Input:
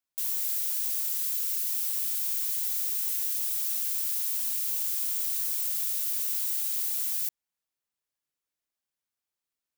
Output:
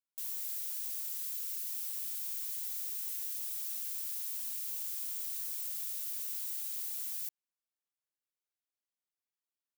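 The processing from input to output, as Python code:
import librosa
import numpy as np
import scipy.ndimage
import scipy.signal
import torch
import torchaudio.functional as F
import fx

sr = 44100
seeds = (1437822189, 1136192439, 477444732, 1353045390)

y = fx.highpass(x, sr, hz=180.0, slope=6)
y = F.gain(torch.from_numpy(y), -9.0).numpy()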